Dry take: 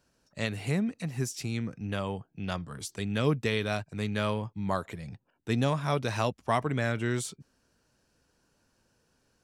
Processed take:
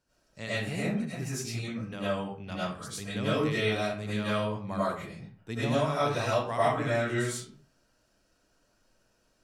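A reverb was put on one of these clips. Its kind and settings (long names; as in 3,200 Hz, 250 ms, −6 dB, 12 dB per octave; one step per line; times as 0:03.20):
comb and all-pass reverb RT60 0.45 s, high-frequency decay 0.7×, pre-delay 60 ms, DRR −10 dB
level −8.5 dB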